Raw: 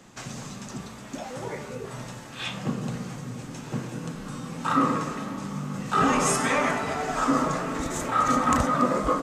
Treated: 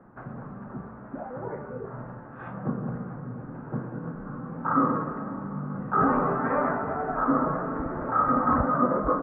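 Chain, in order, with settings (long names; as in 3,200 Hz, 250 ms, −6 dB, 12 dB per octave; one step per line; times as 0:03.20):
Chebyshev low-pass filter 1,500 Hz, order 4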